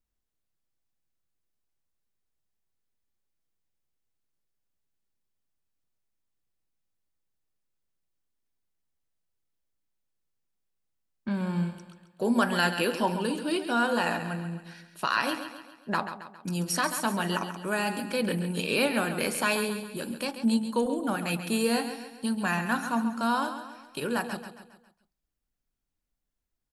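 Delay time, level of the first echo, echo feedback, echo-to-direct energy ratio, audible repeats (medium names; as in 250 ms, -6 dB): 136 ms, -10.0 dB, 47%, -9.0 dB, 4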